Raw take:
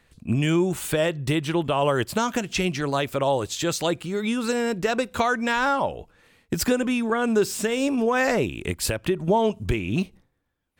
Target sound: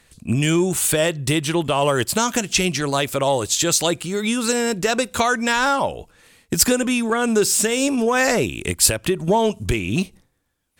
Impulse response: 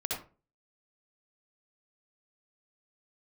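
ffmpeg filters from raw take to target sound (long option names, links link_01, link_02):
-af "acontrast=40,equalizer=frequency=9100:width_type=o:width=2:gain=11,volume=-2.5dB"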